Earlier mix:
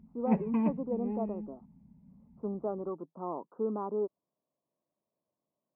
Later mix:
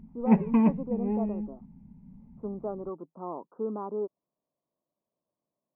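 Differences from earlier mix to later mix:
background +7.0 dB; master: remove HPF 44 Hz

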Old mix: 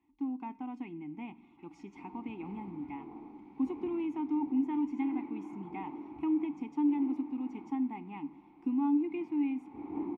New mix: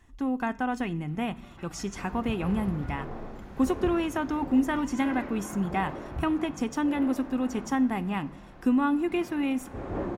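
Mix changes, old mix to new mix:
second sound -3.5 dB; master: remove vowel filter u

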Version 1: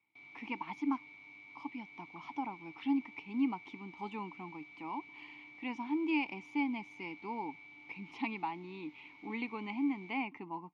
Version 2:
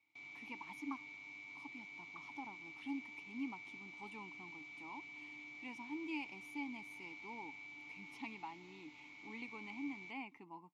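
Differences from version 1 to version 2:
speech -11.5 dB; master: remove air absorption 170 m

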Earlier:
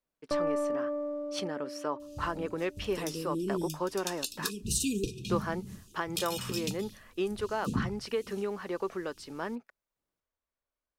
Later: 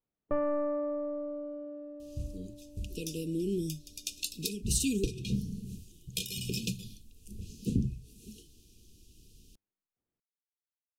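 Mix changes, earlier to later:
speech: muted; first sound: add air absorption 310 m; master: add low shelf 91 Hz +8.5 dB

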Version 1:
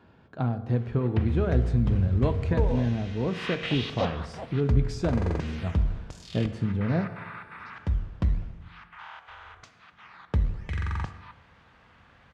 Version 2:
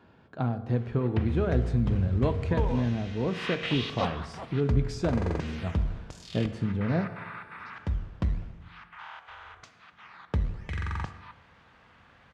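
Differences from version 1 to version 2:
second sound: remove synth low-pass 660 Hz, resonance Q 1.6; master: add low shelf 110 Hz -4.5 dB

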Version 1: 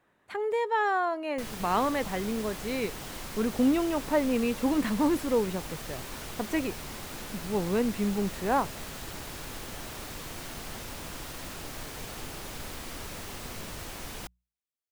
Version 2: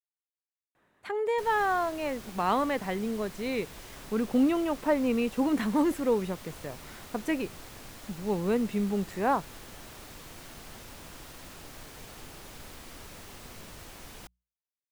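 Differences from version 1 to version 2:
speech: entry +0.75 s; background -6.5 dB

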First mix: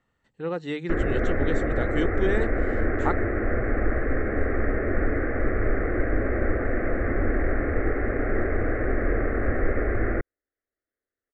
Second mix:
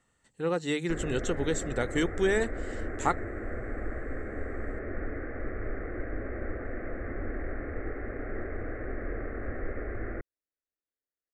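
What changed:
speech: remove air absorption 170 m; background -11.0 dB

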